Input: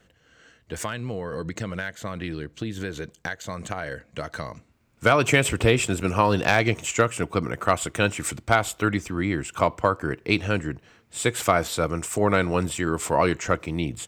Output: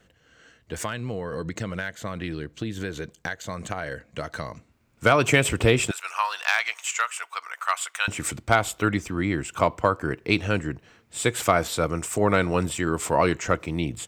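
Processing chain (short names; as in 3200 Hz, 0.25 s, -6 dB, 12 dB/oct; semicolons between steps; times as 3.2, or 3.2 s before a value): 5.91–8.08 HPF 980 Hz 24 dB/oct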